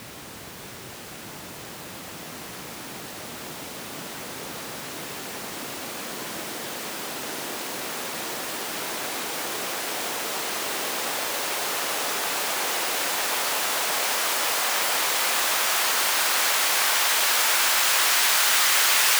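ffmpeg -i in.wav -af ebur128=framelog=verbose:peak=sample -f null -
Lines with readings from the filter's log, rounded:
Integrated loudness:
  I:         -22.8 LUFS
  Threshold: -33.8 LUFS
Loudness range:
  LRA:        16.3 LU
  Threshold: -44.6 LUFS
  LRA low:   -35.4 LUFS
  LRA high:  -19.1 LUFS
Sample peak:
  Peak:       -7.4 dBFS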